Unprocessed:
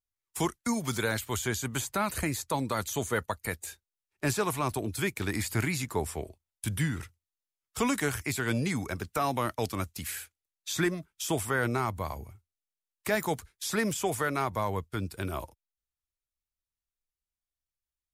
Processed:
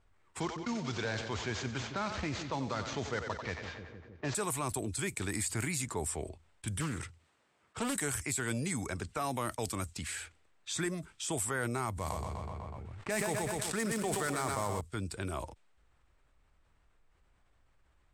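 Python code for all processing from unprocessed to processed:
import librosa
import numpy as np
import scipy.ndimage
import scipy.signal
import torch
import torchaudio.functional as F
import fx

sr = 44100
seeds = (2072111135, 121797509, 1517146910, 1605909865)

y = fx.chain(x, sr, fx.cvsd(bps=32000),
    fx.highpass(hz=40.0, slope=12),
    fx.echo_split(split_hz=440.0, low_ms=155, high_ms=91, feedback_pct=52, wet_db=-12), at=(0.4, 4.35))
y = fx.chain(y, sr, fx.highpass(hz=89.0, slope=12),
    fx.doppler_dist(depth_ms=0.61), at=(6.8, 7.96))
y = fx.chain(y, sr, fx.dead_time(dead_ms=0.097),
    fx.echo_feedback(ms=124, feedback_pct=42, wet_db=-6.5),
    fx.sustainer(db_per_s=22.0), at=(11.92, 14.81))
y = fx.env_lowpass(y, sr, base_hz=1700.0, full_db=-26.5)
y = fx.peak_eq(y, sr, hz=8200.0, db=14.0, octaves=0.38)
y = fx.env_flatten(y, sr, amount_pct=50)
y = F.gain(torch.from_numpy(y), -8.0).numpy()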